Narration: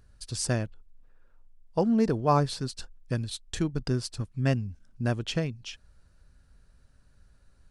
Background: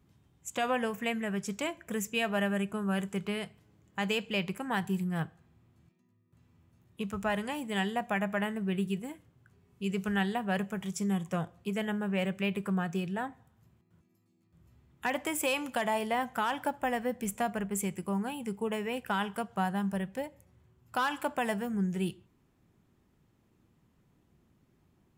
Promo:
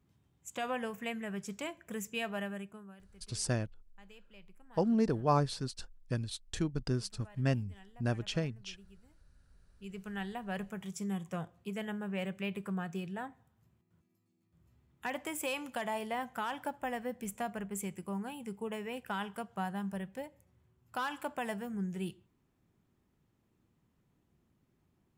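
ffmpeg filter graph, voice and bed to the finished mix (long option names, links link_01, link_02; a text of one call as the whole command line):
ffmpeg -i stem1.wav -i stem2.wav -filter_complex "[0:a]adelay=3000,volume=-5dB[link_01];[1:a]volume=14.5dB,afade=type=out:start_time=2.23:duration=0.73:silence=0.0944061,afade=type=in:start_time=9.32:duration=1.45:silence=0.0944061[link_02];[link_01][link_02]amix=inputs=2:normalize=0" out.wav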